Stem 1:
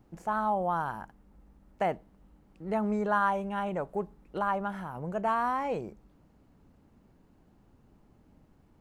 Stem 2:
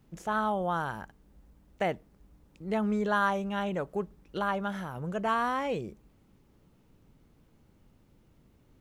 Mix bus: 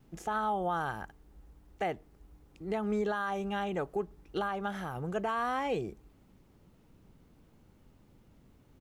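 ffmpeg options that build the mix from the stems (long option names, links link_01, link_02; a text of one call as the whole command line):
ffmpeg -i stem1.wav -i stem2.wav -filter_complex "[0:a]volume=-8dB[link_01];[1:a]adelay=2.4,volume=0.5dB[link_02];[link_01][link_02]amix=inputs=2:normalize=0,alimiter=limit=-23.5dB:level=0:latency=1:release=183" out.wav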